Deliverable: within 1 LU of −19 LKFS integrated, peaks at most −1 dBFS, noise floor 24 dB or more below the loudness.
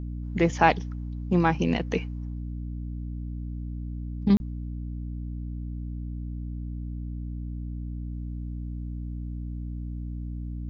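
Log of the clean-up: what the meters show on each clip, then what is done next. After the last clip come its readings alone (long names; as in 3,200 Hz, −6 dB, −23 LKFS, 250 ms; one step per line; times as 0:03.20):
number of dropouts 1; longest dropout 31 ms; mains hum 60 Hz; hum harmonics up to 300 Hz; level of the hum −31 dBFS; integrated loudness −30.5 LKFS; sample peak −5.0 dBFS; target loudness −19.0 LKFS
→ repair the gap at 0:04.37, 31 ms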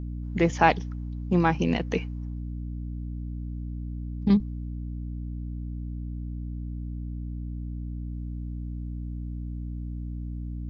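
number of dropouts 0; mains hum 60 Hz; hum harmonics up to 300 Hz; level of the hum −31 dBFS
→ hum removal 60 Hz, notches 5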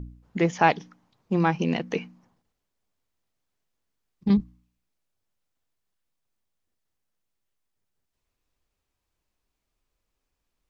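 mains hum none found; integrated loudness −25.5 LKFS; sample peak −5.0 dBFS; target loudness −19.0 LKFS
→ level +6.5 dB
brickwall limiter −1 dBFS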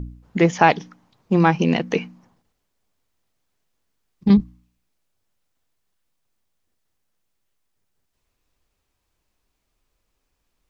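integrated loudness −19.0 LKFS; sample peak −1.0 dBFS; background noise floor −75 dBFS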